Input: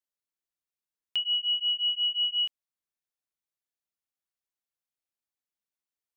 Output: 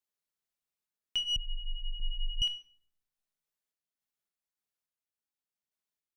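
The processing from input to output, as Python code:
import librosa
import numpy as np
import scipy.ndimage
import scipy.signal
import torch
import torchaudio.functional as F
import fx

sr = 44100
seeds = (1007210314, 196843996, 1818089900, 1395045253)

y = fx.diode_clip(x, sr, knee_db=-23.5)
y = fx.tremolo_random(y, sr, seeds[0], hz=3.5, depth_pct=55)
y = fx.room_shoebox(y, sr, seeds[1], volume_m3=850.0, walls='furnished', distance_m=1.4)
y = fx.freq_invert(y, sr, carrier_hz=2900, at=(1.36, 2.42))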